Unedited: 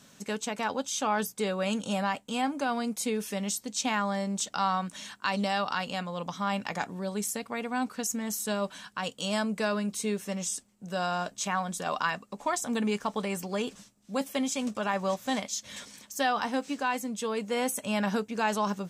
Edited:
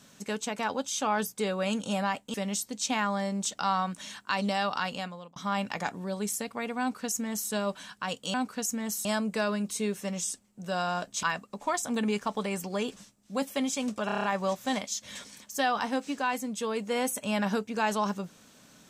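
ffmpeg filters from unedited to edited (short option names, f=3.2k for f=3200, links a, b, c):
-filter_complex "[0:a]asplit=12[a][b][c][d][e][f][g][h][i][j][k][l];[a]atrim=end=2.342[m];[b]atrim=start=3.288:end=6.31,asetpts=PTS-STARTPTS,afade=t=out:st=2.582:d=0.44[n];[c]atrim=start=6.31:end=9.292,asetpts=PTS-STARTPTS,afade=t=in:d=0.004:c=hsin[o];[d]atrim=start=7.748:end=8.462[p];[e]atrim=start=9.288:end=11.472[q];[f]atrim=start=12.018:end=14.882[r];[g]atrim=start=14.848:end=14.882[s];[h]atrim=start=14.848:end=14.882[t];[i]atrim=start=14.848:end=14.882[u];[j]atrim=start=14.848:end=14.882[v];[k]atrim=start=14.848:end=14.882[w];[l]atrim=start=14.848[x];[n][o]concat=n=2:v=0:a=1[y];[m][y]acrossfade=d=0.004:c1=hsin:c2=hsin[z];[z][p]acrossfade=d=0.004:c1=hsin:c2=hsin[aa];[aa][q]acrossfade=d=0.004:c1=hsin:c2=hsin[ab];[ab][r]acrossfade=d=0.004:c1=hsin:c2=hsin[ac];[ac][s]acrossfade=d=0.004:c1=hsin:c2=hsin[ad];[ad][t]acrossfade=d=0.004:c1=hsin:c2=hsin[ae];[ae][u]acrossfade=d=0.004:c1=hsin:c2=hsin[af];[af][v]acrossfade=d=0.004:c1=hsin:c2=hsin[ag];[ag][w]acrossfade=d=0.004:c1=hsin:c2=hsin[ah];[ah][x]acrossfade=d=0.004:c1=hsin:c2=hsin"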